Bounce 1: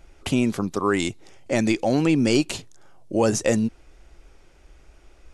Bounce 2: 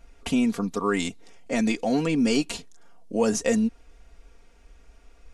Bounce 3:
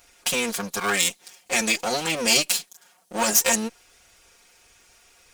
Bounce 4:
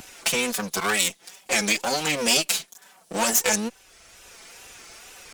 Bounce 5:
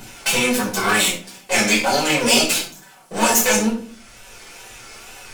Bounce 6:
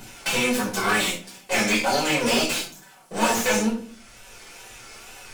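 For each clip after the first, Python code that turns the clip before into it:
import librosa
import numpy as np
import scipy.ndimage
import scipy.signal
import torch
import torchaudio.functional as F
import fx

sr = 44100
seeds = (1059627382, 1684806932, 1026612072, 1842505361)

y1 = x + 0.75 * np.pad(x, (int(4.3 * sr / 1000.0), 0))[:len(x)]
y1 = F.gain(torch.from_numpy(y1), -4.5).numpy()
y2 = fx.lower_of_two(y1, sr, delay_ms=5.5)
y2 = fx.tilt_eq(y2, sr, slope=4.0)
y2 = F.gain(torch.from_numpy(y2), 3.0).numpy()
y3 = fx.wow_flutter(y2, sr, seeds[0], rate_hz=2.1, depth_cents=120.0)
y3 = fx.band_squash(y3, sr, depth_pct=40)
y4 = fx.room_shoebox(y3, sr, seeds[1], volume_m3=420.0, walls='furnished', distance_m=5.1)
y4 = F.gain(torch.from_numpy(y4), -2.0).numpy()
y5 = fx.slew_limit(y4, sr, full_power_hz=480.0)
y5 = F.gain(torch.from_numpy(y5), -3.5).numpy()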